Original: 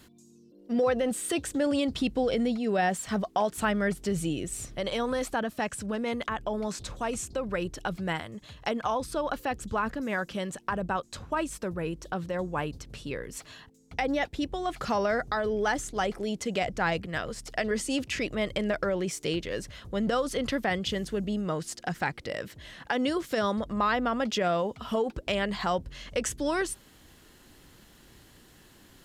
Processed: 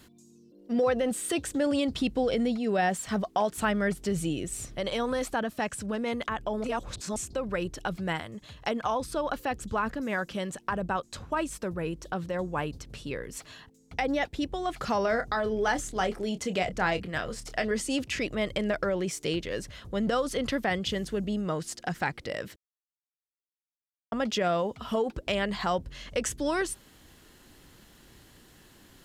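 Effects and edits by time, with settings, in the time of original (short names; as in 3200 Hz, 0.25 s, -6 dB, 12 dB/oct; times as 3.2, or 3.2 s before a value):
6.64–7.16 reverse
15.02–17.65 doubler 27 ms -10.5 dB
22.56–24.12 mute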